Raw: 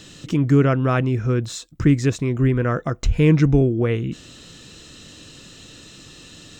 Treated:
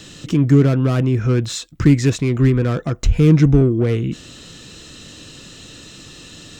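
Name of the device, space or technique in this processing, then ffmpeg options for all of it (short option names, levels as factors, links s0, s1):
one-band saturation: -filter_complex "[0:a]asettb=1/sr,asplit=3[s0][s1][s2];[s0]atrim=end=1.214[s3];[s1]atrim=start=1.21:end=2.5,asetpts=PTS-STARTPTS,afade=t=in:d=0.004:c=qsin,afade=t=out:st=1.286:d=0.004:c=qsin,equalizer=f=2400:w=0.73:g=5.5[s4];[s2]atrim=start=2.496[s5];[s3][s4]acrossfade=d=0.004:c1=hsin:c2=qsin[s6];[s6][s5]acrossfade=d=0.004:c1=qsin:c2=hsin,acrossover=split=420|4300[s7][s8][s9];[s8]asoftclip=type=tanh:threshold=0.0355[s10];[s7][s10][s9]amix=inputs=3:normalize=0,volume=1.58"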